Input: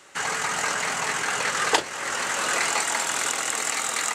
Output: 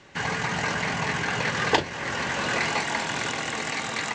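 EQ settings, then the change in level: LPF 6000 Hz 24 dB/oct; tone controls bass +15 dB, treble -4 dB; notch 1300 Hz, Q 6.1; 0.0 dB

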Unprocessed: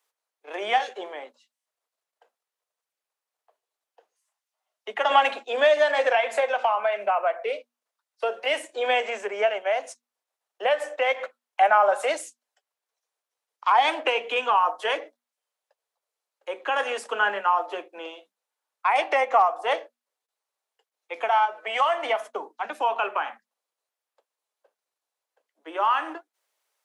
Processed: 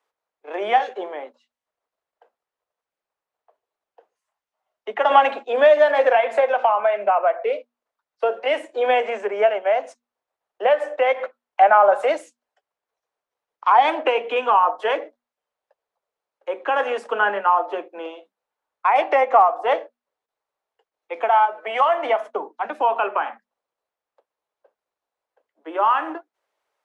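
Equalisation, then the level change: LPF 1100 Hz 6 dB/oct; +7.0 dB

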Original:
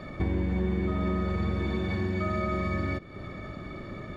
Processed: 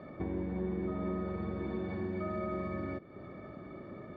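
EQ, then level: band-pass 450 Hz, Q 0.52; -4.0 dB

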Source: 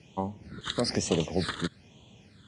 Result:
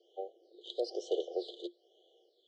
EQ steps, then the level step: rippled Chebyshev high-pass 340 Hz, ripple 6 dB; brick-wall FIR band-stop 790–2900 Hz; air absorption 220 m; 0.0 dB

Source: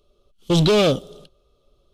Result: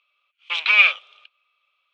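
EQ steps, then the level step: HPF 1100 Hz 24 dB/oct; synth low-pass 2400 Hz, resonance Q 11; 0.0 dB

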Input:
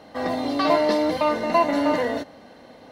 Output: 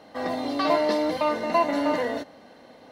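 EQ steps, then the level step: low shelf 110 Hz -7 dB; -2.5 dB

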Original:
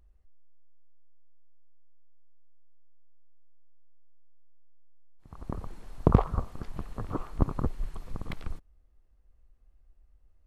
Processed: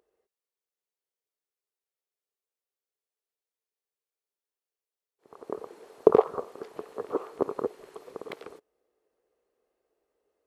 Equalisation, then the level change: resonant high-pass 430 Hz, resonance Q 4.9; 0.0 dB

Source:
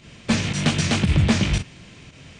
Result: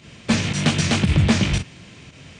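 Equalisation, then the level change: HPF 55 Hz; +1.5 dB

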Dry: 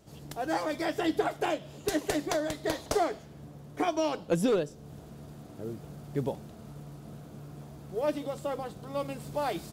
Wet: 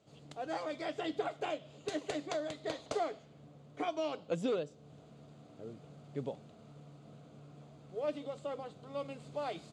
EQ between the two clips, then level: speaker cabinet 150–6900 Hz, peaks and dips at 200 Hz -6 dB, 350 Hz -7 dB, 910 Hz -6 dB, 1700 Hz -7 dB, 5500 Hz -10 dB; -5.0 dB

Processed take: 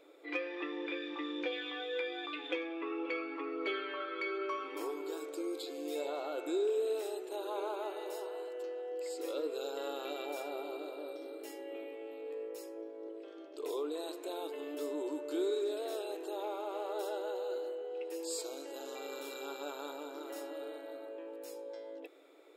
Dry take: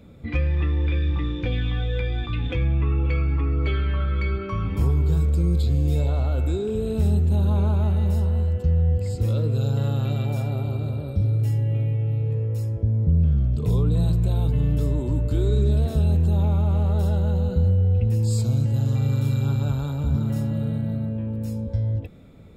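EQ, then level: brick-wall FIR high-pass 290 Hz; -4.0 dB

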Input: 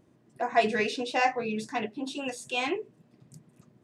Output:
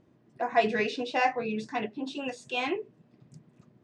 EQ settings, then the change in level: air absorption 130 m; high shelf 6500 Hz +5.5 dB; 0.0 dB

